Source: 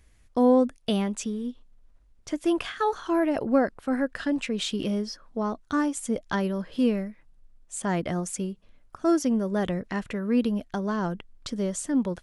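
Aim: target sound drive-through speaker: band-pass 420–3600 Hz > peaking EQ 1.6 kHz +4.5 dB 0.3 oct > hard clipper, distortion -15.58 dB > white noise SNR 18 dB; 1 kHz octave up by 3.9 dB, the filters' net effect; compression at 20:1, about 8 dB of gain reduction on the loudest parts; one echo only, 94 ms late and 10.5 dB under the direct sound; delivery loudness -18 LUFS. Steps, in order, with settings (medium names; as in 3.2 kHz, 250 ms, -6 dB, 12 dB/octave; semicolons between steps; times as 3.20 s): peaking EQ 1 kHz +5 dB; compression 20:1, threshold -22 dBFS; band-pass 420–3600 Hz; peaking EQ 1.6 kHz +4.5 dB 0.3 oct; delay 94 ms -10.5 dB; hard clipper -23 dBFS; white noise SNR 18 dB; trim +15.5 dB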